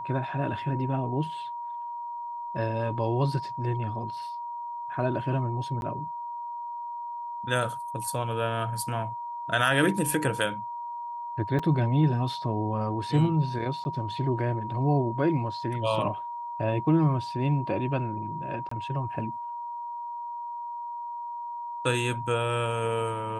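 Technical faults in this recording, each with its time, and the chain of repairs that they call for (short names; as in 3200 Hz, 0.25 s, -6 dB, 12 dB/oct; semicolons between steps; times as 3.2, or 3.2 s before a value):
tone 950 Hz -33 dBFS
5.81–5.82 gap 11 ms
11.59 gap 4.5 ms
13.84–13.85 gap 10 ms
18.69–18.71 gap 24 ms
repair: notch 950 Hz, Q 30; interpolate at 5.81, 11 ms; interpolate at 11.59, 4.5 ms; interpolate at 13.84, 10 ms; interpolate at 18.69, 24 ms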